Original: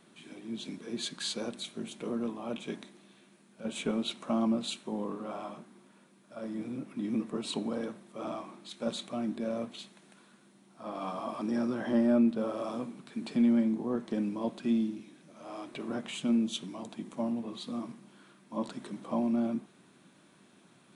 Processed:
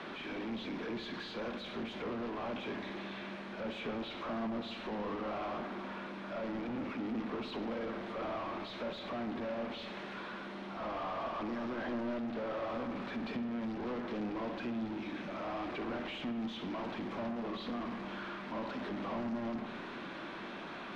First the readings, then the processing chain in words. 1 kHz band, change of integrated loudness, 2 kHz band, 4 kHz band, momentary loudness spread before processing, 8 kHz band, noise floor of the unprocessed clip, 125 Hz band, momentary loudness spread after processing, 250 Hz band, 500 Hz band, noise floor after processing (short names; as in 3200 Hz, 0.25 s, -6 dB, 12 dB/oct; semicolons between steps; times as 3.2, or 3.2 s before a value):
+2.0 dB, -6.0 dB, +5.0 dB, -5.0 dB, 15 LU, under -15 dB, -62 dBFS, -3.0 dB, 5 LU, -7.5 dB, -2.5 dB, -45 dBFS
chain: block floating point 5-bit; HPF 140 Hz 12 dB/oct; compressor 2.5:1, threshold -41 dBFS, peak gain reduction 13 dB; hard clip -35 dBFS, distortion -18 dB; overdrive pedal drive 33 dB, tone 4300 Hz, clips at -35 dBFS; air absorption 270 m; darkening echo 66 ms, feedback 83%, low-pass 3300 Hz, level -12.5 dB; gain +2 dB